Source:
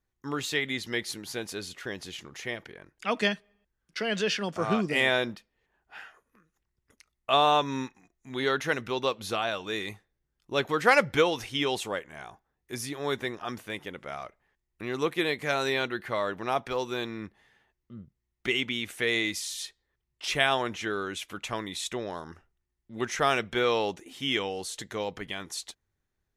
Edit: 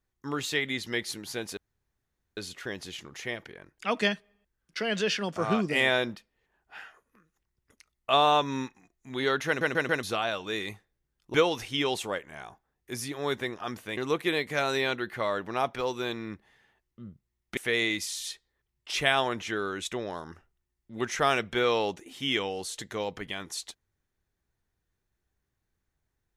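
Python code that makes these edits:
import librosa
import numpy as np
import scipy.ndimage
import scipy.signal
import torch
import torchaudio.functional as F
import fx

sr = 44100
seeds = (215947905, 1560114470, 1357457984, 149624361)

y = fx.edit(x, sr, fx.insert_room_tone(at_s=1.57, length_s=0.8),
    fx.stutter_over(start_s=8.67, slice_s=0.14, count=4),
    fx.cut(start_s=10.54, length_s=0.61),
    fx.cut(start_s=13.78, length_s=1.11),
    fx.cut(start_s=18.49, length_s=0.42),
    fx.cut(start_s=21.19, length_s=0.66), tone=tone)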